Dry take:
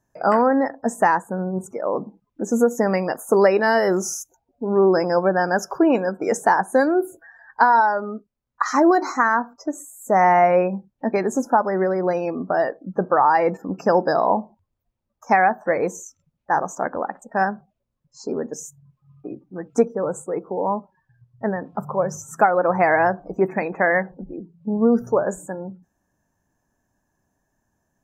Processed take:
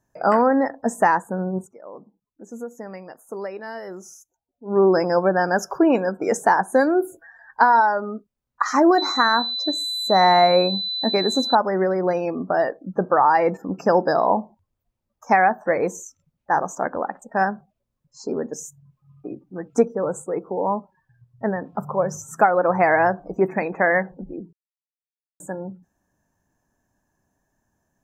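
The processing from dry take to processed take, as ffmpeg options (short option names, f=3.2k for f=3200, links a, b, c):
-filter_complex "[0:a]asettb=1/sr,asplit=3[a][b][c];[a]atrim=end=8.984[d];[b]atrim=start=8.98:end=11.55,asetpts=PTS-STARTPTS,afade=t=in:d=0.004:c=qsin,afade=t=out:st=2.566:d=0.004:c=qsin,aeval=exprs='val(0)+0.0631*sin(2*PI*4000*n/s)':c=same[e];[c]atrim=start=11.546[f];[d][e]acrossfade=d=0.004:c1=hsin:c2=qsin[g];[g][f]acrossfade=d=0.004:c1=qsin:c2=hsin,asplit=5[h][i][j][k][l];[h]atrim=end=1.69,asetpts=PTS-STARTPTS,afade=t=out:st=1.56:d=0.13:silence=0.158489[m];[i]atrim=start=1.69:end=4.64,asetpts=PTS-STARTPTS,volume=-16dB[n];[j]atrim=start=4.64:end=24.53,asetpts=PTS-STARTPTS,afade=t=in:d=0.13:silence=0.158489,afade=t=out:st=19.886:d=0.004:c=hsin[o];[k]atrim=start=24.53:end=25.4,asetpts=PTS-STARTPTS,volume=0[p];[l]atrim=start=25.4,asetpts=PTS-STARTPTS,afade=t=in:d=0.004:c=hsin[q];[m][n][o][p][q]concat=n=5:v=0:a=1"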